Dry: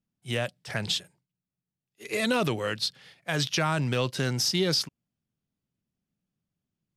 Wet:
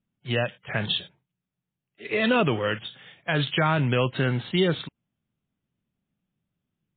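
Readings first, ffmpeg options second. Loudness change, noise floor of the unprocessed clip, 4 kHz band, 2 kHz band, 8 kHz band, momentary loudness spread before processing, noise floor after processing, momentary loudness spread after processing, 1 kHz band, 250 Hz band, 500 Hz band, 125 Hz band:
+2.5 dB, below −85 dBFS, −1.0 dB, +4.0 dB, below −40 dB, 9 LU, below −85 dBFS, 11 LU, +4.0 dB, +4.0 dB, +4.0 dB, +4.0 dB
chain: -af "volume=4.5dB" -ar 8000 -c:a libmp3lame -b:a 16k

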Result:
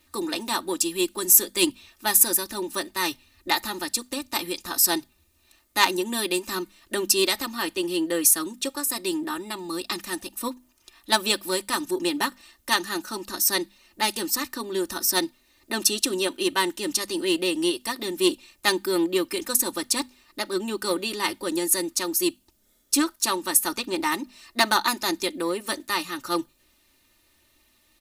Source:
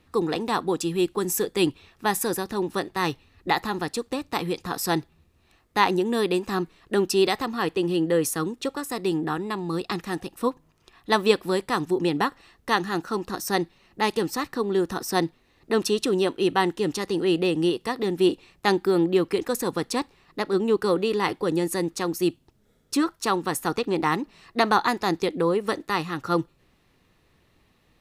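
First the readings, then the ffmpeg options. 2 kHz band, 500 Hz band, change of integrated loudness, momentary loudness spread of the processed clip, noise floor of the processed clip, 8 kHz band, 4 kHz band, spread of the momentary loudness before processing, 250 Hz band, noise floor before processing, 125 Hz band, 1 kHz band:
+1.5 dB, −5.0 dB, +1.0 dB, 10 LU, −64 dBFS, +11.5 dB, +5.5 dB, 7 LU, −3.0 dB, −64 dBFS, −12.5 dB, −2.5 dB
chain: -af "bandreject=frequency=50:width_type=h:width=6,bandreject=frequency=100:width_type=h:width=6,bandreject=frequency=150:width_type=h:width=6,bandreject=frequency=200:width_type=h:width=6,bandreject=frequency=250:width_type=h:width=6,aecho=1:1:3.3:0.81,aeval=exprs='0.531*(cos(1*acos(clip(val(0)/0.531,-1,1)))-cos(1*PI/2))+0.0596*(cos(3*acos(clip(val(0)/0.531,-1,1)))-cos(3*PI/2))':channel_layout=same,crystalizer=i=5:c=0,volume=-3.5dB"

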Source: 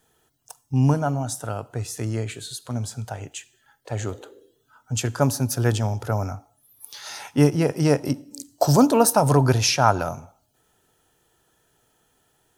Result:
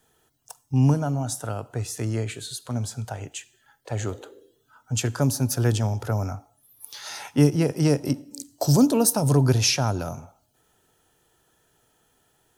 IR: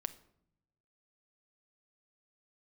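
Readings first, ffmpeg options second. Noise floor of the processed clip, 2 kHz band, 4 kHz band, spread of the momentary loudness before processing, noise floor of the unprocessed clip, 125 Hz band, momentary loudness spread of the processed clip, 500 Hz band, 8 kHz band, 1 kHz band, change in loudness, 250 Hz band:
−67 dBFS, −3.5 dB, −0.5 dB, 18 LU, −67 dBFS, 0.0 dB, 16 LU, −4.0 dB, 0.0 dB, −8.5 dB, −1.5 dB, −0.5 dB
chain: -filter_complex "[0:a]acrossover=split=440|3000[link_01][link_02][link_03];[link_02]acompressor=threshold=-30dB:ratio=6[link_04];[link_01][link_04][link_03]amix=inputs=3:normalize=0"

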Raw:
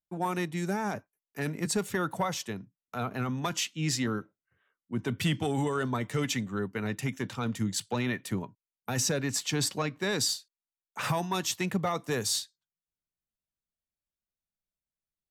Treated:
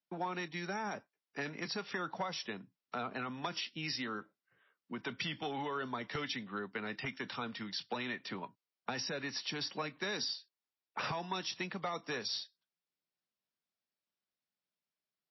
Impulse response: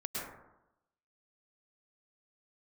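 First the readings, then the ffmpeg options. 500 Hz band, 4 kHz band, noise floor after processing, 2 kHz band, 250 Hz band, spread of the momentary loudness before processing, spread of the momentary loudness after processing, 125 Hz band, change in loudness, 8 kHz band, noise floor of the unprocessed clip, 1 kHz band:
−9.0 dB, −5.0 dB, below −85 dBFS, −4.0 dB, −11.5 dB, 8 LU, 7 LU, −15.5 dB, −8.5 dB, −18.0 dB, below −85 dBFS, −5.5 dB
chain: -filter_complex "[0:a]acrossover=split=700|5800[link_01][link_02][link_03];[link_01]acompressor=threshold=-44dB:ratio=4[link_04];[link_02]acompressor=threshold=-41dB:ratio=4[link_05];[link_03]acompressor=threshold=-43dB:ratio=4[link_06];[link_04][link_05][link_06]amix=inputs=3:normalize=0,acrossover=split=140|710|6300[link_07][link_08][link_09][link_10];[link_07]acrusher=bits=6:mix=0:aa=0.000001[link_11];[link_11][link_08][link_09][link_10]amix=inputs=4:normalize=0,volume=2.5dB" -ar 16000 -c:a libmp3lame -b:a 24k

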